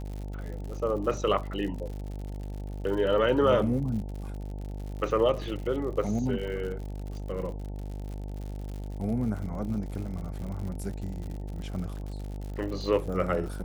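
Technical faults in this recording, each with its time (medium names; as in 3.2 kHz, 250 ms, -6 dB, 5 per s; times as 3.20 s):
buzz 50 Hz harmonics 18 -36 dBFS
crackle 92 per s -37 dBFS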